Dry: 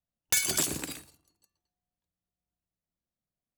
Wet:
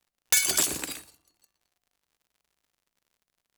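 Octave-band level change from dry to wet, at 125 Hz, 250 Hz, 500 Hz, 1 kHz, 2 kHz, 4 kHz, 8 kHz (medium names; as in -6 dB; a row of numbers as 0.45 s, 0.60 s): -4.5 dB, -1.5 dB, +1.0 dB, +3.0 dB, +4.0 dB, +4.0 dB, +4.0 dB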